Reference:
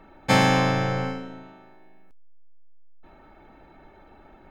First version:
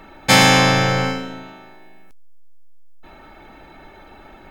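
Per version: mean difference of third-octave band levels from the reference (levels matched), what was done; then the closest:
3.0 dB: high-shelf EQ 2,100 Hz +11 dB
soft clipping −11.5 dBFS, distortion −15 dB
level +6.5 dB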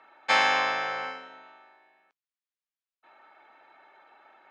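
7.0 dB: high-pass filter 970 Hz 12 dB per octave
high-frequency loss of the air 120 metres
level +2.5 dB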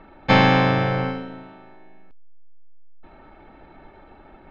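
1.5 dB: gain on one half-wave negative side −3 dB
low-pass filter 4,200 Hz 24 dB per octave
level +5 dB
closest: third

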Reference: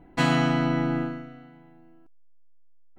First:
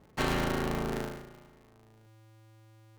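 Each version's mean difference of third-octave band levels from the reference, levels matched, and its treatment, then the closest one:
8.5 dB: ring modulator with a square carrier 110 Hz
level −7.5 dB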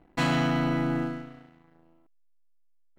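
2.0 dB: leveller curve on the samples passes 2
level −8 dB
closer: second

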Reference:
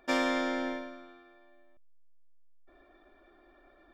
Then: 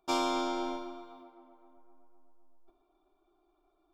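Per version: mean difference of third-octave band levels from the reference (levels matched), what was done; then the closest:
5.0 dB: noise gate −56 dBFS, range −13 dB
phaser with its sweep stopped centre 360 Hz, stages 8
on a send: tape delay 257 ms, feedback 67%, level −16.5 dB, low-pass 2,200 Hz
on the sum: level +4 dB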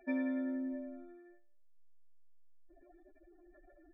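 8.0 dB: expanding power law on the bin magnitudes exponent 3.2
in parallel at +3 dB: downward compressor 8 to 1, threshold −41 dBFS, peak gain reduction 14 dB
on the sum: floating-point word with a short mantissa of 8 bits
level −7.5 dB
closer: first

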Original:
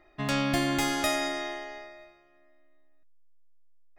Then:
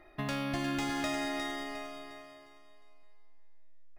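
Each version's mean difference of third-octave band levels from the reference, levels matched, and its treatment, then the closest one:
7.0 dB: downward compressor 3 to 1, threshold −38 dBFS, peak gain reduction 12 dB
repeating echo 356 ms, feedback 39%, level −7 dB
linearly interpolated sample-rate reduction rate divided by 3×
level +3 dB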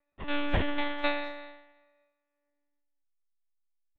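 10.5 dB: one-pitch LPC vocoder at 8 kHz 290 Hz
far-end echo of a speakerphone 200 ms, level −20 dB
expander for the loud parts 2.5 to 1, over −41 dBFS
level +3 dB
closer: first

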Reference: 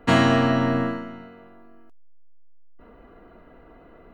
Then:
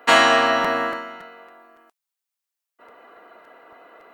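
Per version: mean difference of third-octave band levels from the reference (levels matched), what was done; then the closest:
6.0 dB: high-pass filter 680 Hz 12 dB per octave
high-shelf EQ 7,600 Hz +4 dB
regular buffer underruns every 0.28 s, samples 256, repeat, from 0:00.64
level +8 dB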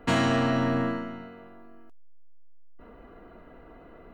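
3.0 dB: dynamic equaliser 7,800 Hz, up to +5 dB, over −45 dBFS, Q 0.98
downward compressor 1.5 to 1, threshold −24 dBFS, peak gain reduction 4.5 dB
soft clipping −17 dBFS, distortion −16 dB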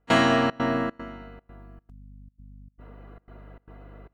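4.0 dB: high-pass filter 280 Hz 6 dB per octave
mains hum 50 Hz, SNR 18 dB
gate pattern ".xxxx.xxx" 151 BPM −24 dB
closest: second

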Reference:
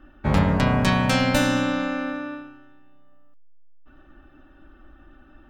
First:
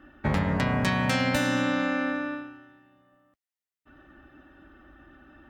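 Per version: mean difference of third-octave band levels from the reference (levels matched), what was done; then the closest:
2.5 dB: parametric band 1,900 Hz +6 dB 0.34 octaves
downward compressor 6 to 1, threshold −21 dBFS, peak gain reduction 8 dB
high-pass filter 62 Hz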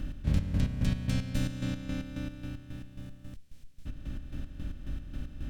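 11.5 dB: compressor on every frequency bin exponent 0.4
square-wave tremolo 3.7 Hz, depth 65%, duty 45%
guitar amp tone stack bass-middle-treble 10-0-1
in parallel at −2 dB: downward compressor, threshold −42 dBFS, peak gain reduction 16.5 dB
on the sum: level +2.5 dB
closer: first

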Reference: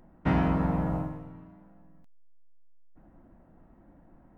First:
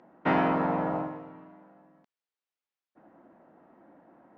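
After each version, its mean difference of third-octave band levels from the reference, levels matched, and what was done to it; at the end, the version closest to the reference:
4.0 dB: high-pass filter 350 Hz 12 dB per octave
high-frequency loss of the air 150 metres
level +6.5 dB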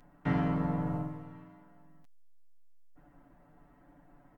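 2.0 dB: comb filter 6.9 ms, depth 90%
one half of a high-frequency compander encoder only
level −7.5 dB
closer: second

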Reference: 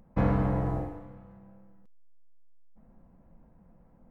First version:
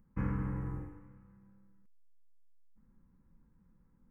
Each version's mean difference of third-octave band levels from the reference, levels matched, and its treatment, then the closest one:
2.5 dB: phaser with its sweep stopped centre 1,600 Hz, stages 4
level −7.5 dB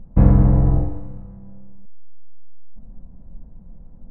3.5 dB: spectral tilt −4 dB per octave
level +1 dB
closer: first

